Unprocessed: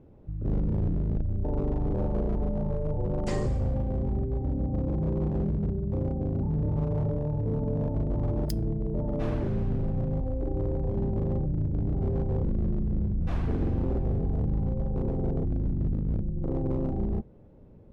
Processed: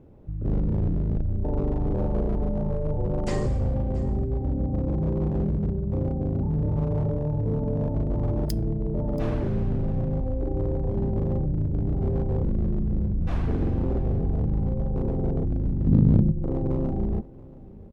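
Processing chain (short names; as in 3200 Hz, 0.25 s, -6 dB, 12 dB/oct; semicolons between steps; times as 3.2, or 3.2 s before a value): 15.87–16.32 graphic EQ 125/250/500/1000/2000/4000 Hz +11/+9/+4/+7/+3/+10 dB; on a send: echo 0.68 s -20.5 dB; on the sum: gain +2.5 dB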